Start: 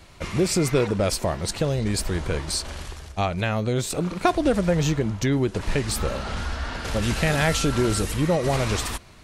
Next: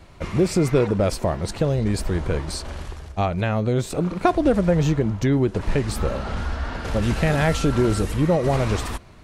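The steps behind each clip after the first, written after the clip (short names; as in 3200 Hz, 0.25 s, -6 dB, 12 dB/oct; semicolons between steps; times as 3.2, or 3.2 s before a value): high shelf 2000 Hz -9.5 dB; gain +3 dB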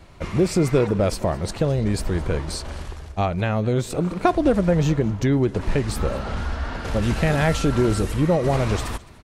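echo 0.212 s -21.5 dB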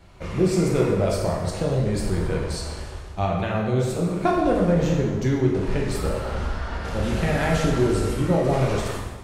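plate-style reverb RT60 1.3 s, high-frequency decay 0.8×, DRR -2.5 dB; gain -5.5 dB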